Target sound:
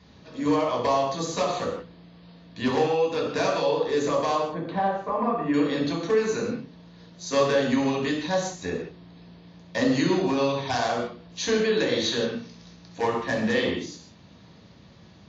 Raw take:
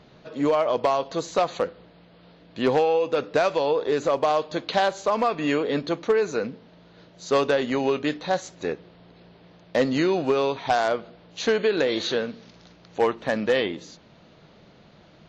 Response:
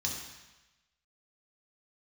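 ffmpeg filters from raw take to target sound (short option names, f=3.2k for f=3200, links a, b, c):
-filter_complex "[0:a]asettb=1/sr,asplit=3[a][b][c];[a]atrim=end=4.354[d];[b]atrim=start=4.35:end=5.54,asetpts=PTS-STARTPTS,afade=t=in:d=0.004:c=qsin,afade=t=out:st=1.186:d=0.004:c=qsin,lowpass=1.3k[e];[c]atrim=start=5.536[f];[d][e]acrossfade=d=0.004:c1=hsin:c2=qsin[g];[g][f]acrossfade=d=0.004:c1=qsin:c2=hsin[h];[1:a]atrim=start_sample=2205,afade=t=out:st=0.24:d=0.01,atrim=end_sample=11025[i];[h][i]afir=irnorm=-1:irlink=0,volume=-4dB"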